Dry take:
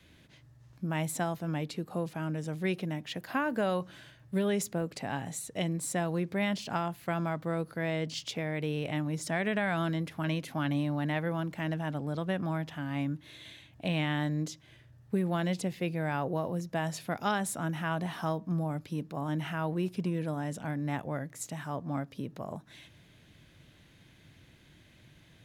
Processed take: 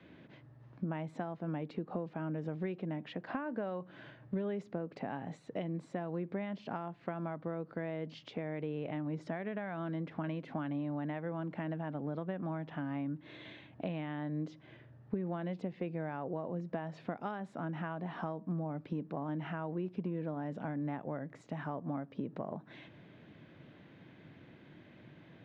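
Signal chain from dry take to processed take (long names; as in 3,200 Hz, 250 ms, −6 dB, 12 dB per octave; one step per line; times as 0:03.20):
high-pass filter 190 Hz 12 dB per octave
downward compressor 6 to 1, threshold −42 dBFS, peak gain reduction 16.5 dB
head-to-tape spacing loss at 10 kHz 44 dB
level +9 dB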